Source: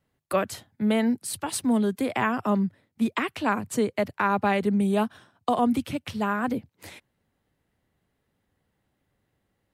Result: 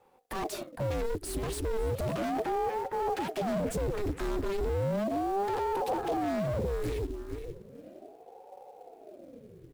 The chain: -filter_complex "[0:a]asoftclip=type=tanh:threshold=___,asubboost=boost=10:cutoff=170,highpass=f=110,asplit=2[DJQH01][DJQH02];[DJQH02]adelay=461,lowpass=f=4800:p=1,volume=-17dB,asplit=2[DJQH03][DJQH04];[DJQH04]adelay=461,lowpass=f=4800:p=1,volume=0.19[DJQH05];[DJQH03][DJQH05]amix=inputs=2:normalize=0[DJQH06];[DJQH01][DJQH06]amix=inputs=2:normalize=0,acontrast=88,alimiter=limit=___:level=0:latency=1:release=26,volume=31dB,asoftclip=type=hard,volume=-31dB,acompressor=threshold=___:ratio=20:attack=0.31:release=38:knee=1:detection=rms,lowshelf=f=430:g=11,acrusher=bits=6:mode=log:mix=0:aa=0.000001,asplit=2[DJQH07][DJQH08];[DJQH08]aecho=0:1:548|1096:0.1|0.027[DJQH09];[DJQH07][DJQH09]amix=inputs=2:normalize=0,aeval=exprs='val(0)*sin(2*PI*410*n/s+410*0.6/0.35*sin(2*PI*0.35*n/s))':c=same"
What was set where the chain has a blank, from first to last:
-18.5dB, -15dB, -35dB